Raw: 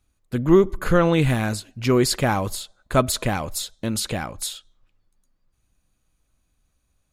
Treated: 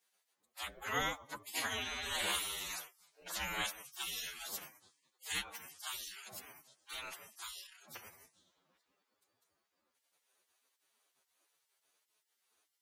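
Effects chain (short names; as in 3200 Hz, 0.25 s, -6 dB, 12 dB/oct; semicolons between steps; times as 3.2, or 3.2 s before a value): spectral gate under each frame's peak -30 dB weak; time stretch by phase-locked vocoder 1.8×; gain +2.5 dB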